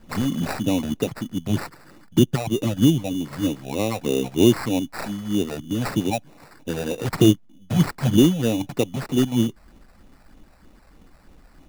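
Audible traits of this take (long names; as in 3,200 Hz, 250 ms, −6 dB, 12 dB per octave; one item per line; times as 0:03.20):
phaser sweep stages 12, 3.2 Hz, lowest notch 310–1,900 Hz
aliases and images of a low sample rate 3,200 Hz, jitter 0%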